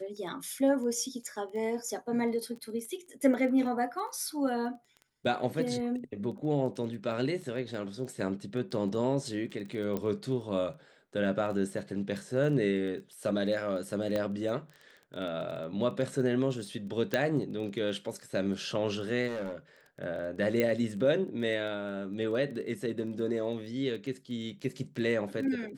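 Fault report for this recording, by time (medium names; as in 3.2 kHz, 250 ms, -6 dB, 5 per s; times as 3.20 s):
crackle 12 per s -39 dBFS
9.97 s: pop -20 dBFS
14.16 s: pop -19 dBFS
17.14 s: pop -14 dBFS
19.27–19.55 s: clipped -32 dBFS
20.60 s: pop -15 dBFS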